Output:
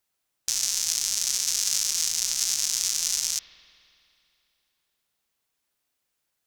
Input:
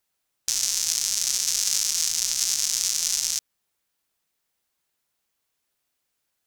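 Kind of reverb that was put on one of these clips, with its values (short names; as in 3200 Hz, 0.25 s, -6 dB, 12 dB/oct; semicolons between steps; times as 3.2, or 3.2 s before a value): spring tank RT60 2.8 s, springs 54 ms, chirp 30 ms, DRR 11.5 dB; gain -1.5 dB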